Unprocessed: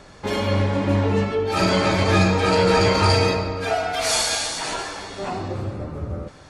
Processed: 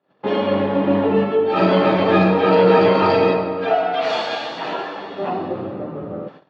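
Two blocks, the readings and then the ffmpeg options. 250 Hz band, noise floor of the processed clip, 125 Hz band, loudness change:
+4.0 dB, -48 dBFS, -4.0 dB, +3.0 dB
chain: -af "agate=range=0.0251:threshold=0.00794:ratio=16:detection=peak,highpass=f=170:w=0.5412,highpass=f=170:w=1.3066,equalizer=f=230:t=q:w=4:g=-3,equalizer=f=1000:t=q:w=4:g=-3,equalizer=f=1500:t=q:w=4:g=-6,equalizer=f=2200:t=q:w=4:g=-10,lowpass=f=2900:w=0.5412,lowpass=f=2900:w=1.3066,volume=2"

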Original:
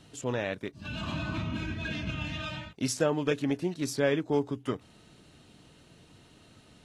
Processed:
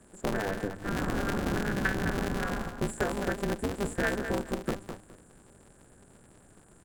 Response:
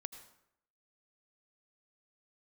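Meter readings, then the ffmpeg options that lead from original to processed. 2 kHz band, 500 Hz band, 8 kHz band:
+4.0 dB, -1.5 dB, -2.5 dB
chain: -filter_complex "[0:a]acrossover=split=2600[s0][s1];[s1]acompressor=threshold=0.00141:ratio=4:attack=1:release=60[s2];[s0][s2]amix=inputs=2:normalize=0,highshelf=f=1600:t=q:w=3:g=7.5,agate=range=0.355:threshold=0.01:ratio=16:detection=peak,bandreject=f=51.39:t=h:w=4,bandreject=f=102.78:t=h:w=4,bandreject=f=154.17:t=h:w=4,bandreject=f=205.56:t=h:w=4,afftfilt=real='re*(1-between(b*sr/4096,1700,7000))':imag='im*(1-between(b*sr/4096,1700,7000))':win_size=4096:overlap=0.75,asubboost=boost=3:cutoff=65,acrossover=split=110|1900[s3][s4][s5];[s3]alimiter=level_in=7.94:limit=0.0631:level=0:latency=1:release=54,volume=0.126[s6];[s4]acompressor=threshold=0.0126:ratio=8[s7];[s6][s7][s5]amix=inputs=3:normalize=0,aecho=1:1:209|418|627:0.355|0.0745|0.0156,aresample=22050,aresample=44100,aeval=exprs='val(0)*sgn(sin(2*PI*100*n/s))':c=same,volume=2.82"

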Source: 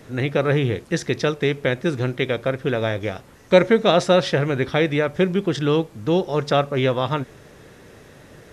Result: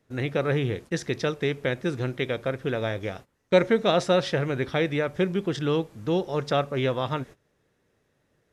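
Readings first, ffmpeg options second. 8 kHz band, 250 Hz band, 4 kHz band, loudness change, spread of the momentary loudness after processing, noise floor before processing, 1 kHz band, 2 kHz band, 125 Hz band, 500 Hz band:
-5.5 dB, -5.5 dB, -5.5 dB, -5.5 dB, 8 LU, -47 dBFS, -5.5 dB, -5.5 dB, -5.5 dB, -5.5 dB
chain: -af "agate=range=0.112:threshold=0.0158:ratio=16:detection=peak,volume=0.531"

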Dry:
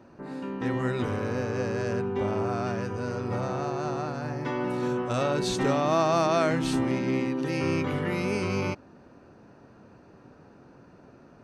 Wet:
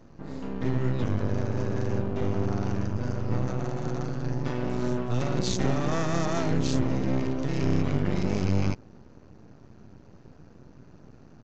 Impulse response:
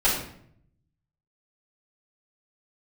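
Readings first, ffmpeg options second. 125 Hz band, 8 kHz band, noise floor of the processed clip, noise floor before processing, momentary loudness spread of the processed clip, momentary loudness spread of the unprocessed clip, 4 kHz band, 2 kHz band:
+4.5 dB, 0.0 dB, -52 dBFS, -54 dBFS, 5 LU, 8 LU, -2.0 dB, -5.0 dB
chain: -af "bass=f=250:g=14,treble=f=4000:g=10,aeval=exprs='max(val(0),0)':c=same,aresample=16000,aresample=44100,volume=0.794"

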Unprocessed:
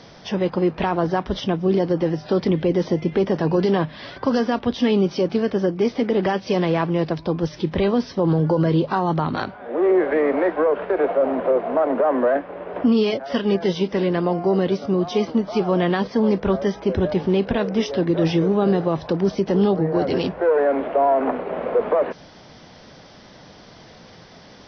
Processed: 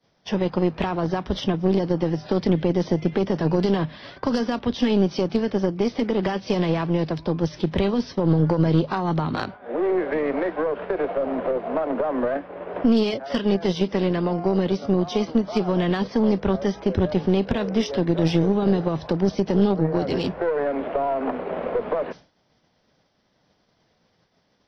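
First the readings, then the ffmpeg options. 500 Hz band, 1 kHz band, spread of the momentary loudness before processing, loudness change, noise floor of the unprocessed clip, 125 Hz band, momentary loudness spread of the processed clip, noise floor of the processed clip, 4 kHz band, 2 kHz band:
-4.0 dB, -4.0 dB, 5 LU, -2.5 dB, -45 dBFS, 0.0 dB, 6 LU, -66 dBFS, -1.0 dB, -3.5 dB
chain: -filter_complex "[0:a]acrossover=split=220|3000[s0][s1][s2];[s1]acompressor=threshold=0.0562:ratio=2.5[s3];[s0][s3][s2]amix=inputs=3:normalize=0,aeval=exprs='0.376*(cos(1*acos(clip(val(0)/0.376,-1,1)))-cos(1*PI/2))+0.0473*(cos(6*acos(clip(val(0)/0.376,-1,1)))-cos(6*PI/2))+0.00841*(cos(7*acos(clip(val(0)/0.376,-1,1)))-cos(7*PI/2))+0.0266*(cos(8*acos(clip(val(0)/0.376,-1,1)))-cos(8*PI/2))':c=same,agate=range=0.0224:threshold=0.0224:ratio=3:detection=peak,volume=1.12"

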